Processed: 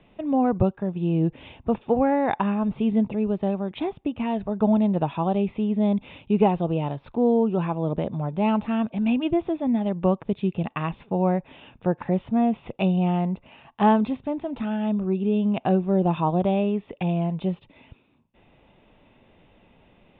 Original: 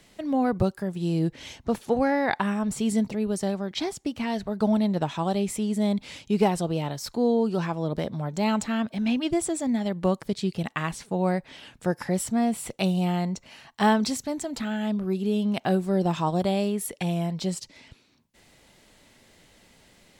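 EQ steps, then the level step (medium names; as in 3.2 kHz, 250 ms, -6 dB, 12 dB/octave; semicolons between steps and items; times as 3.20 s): rippled Chebyshev low-pass 3.7 kHz, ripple 6 dB; tilt shelf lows +6.5 dB; peaking EQ 2.6 kHz +4 dB 0.42 oct; +2.5 dB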